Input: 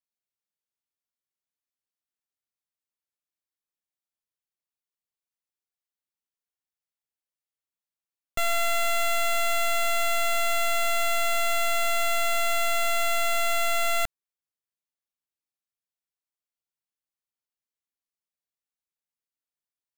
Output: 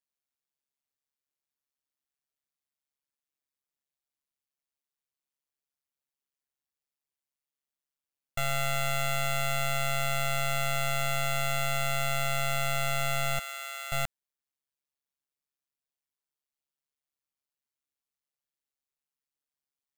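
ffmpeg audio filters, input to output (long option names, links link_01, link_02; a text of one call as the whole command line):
ffmpeg -i in.wav -filter_complex "[0:a]asettb=1/sr,asplit=3[link_01][link_02][link_03];[link_01]atrim=end=13.394[link_04];[link_02]atrim=start=13.39:end=13.92,asetpts=PTS-STARTPTS,afade=type=in:duration=0.004:curve=qsin,afade=type=out:start_time=0.526:duration=0.004:curve=qsin,highpass=frequency=830:width=0.5412,highpass=frequency=830:width=1.3066[link_05];[link_03]atrim=start=13.916[link_06];[link_04][link_05]acrossfade=duration=0.004:curve1=hsin:curve2=qsin[link_07];[link_07][link_06]acrossfade=duration=0.004:curve1=qsin:curve2=hsin,tremolo=f=140:d=0.824,alimiter=level_in=3dB:limit=-24dB:level=0:latency=1:release=17,volume=-3dB,volume=2.5dB" out.wav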